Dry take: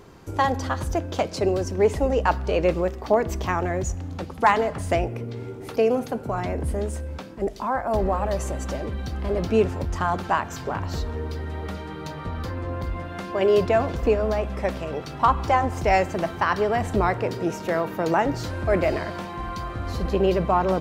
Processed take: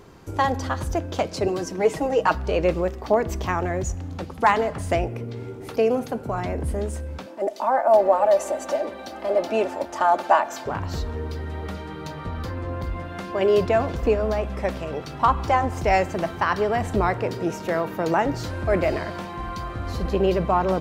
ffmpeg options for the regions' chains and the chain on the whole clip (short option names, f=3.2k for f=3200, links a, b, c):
-filter_complex "[0:a]asettb=1/sr,asplit=3[a][b][c];[a]atrim=end=1.474[d];[b]atrim=start=1.47:end=2.35,asetpts=PTS-STARTPTS,afade=t=in:d=0.004:c=qsin,afade=t=out:st=0.876:d=0.004:c=qsin,highpass=51,equalizer=f=65:w=0.71:g=-11,aecho=1:1:6.3:0.77,atrim=end_sample=38808[e];[c]atrim=start=2.346[f];[d][e]acrossfade=d=0.004:c1=hsin:c2=qsin[g];[g][f]acrossfade=d=0.004:c1=qsin:c2=hsin,asettb=1/sr,asplit=3[h][i][j];[h]atrim=end=7.264[k];[i]atrim=start=7.26:end=10.66,asetpts=PTS-STARTPTS,afade=t=in:d=0.004:c=qsin,afade=t=out:st=3.396:d=0.004:c=qsin,highpass=350,equalizer=f=690:w=2.1:g=10,aecho=1:1:3.4:0.51,atrim=end_sample=149940[l];[j]atrim=start=10.656[m];[k][l]acrossfade=d=0.004:c1=hsin:c2=qsin[n];[n][m]acrossfade=d=0.004:c1=qsin:c2=hsin"